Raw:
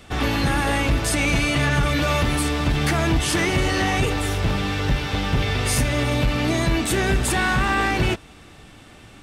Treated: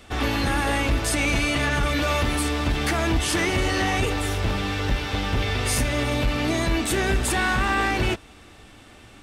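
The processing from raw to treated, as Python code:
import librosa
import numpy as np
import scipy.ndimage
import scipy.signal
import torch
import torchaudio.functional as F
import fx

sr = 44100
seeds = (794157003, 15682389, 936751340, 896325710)

y = fx.peak_eq(x, sr, hz=150.0, db=-9.5, octaves=0.41)
y = y * librosa.db_to_amplitude(-1.5)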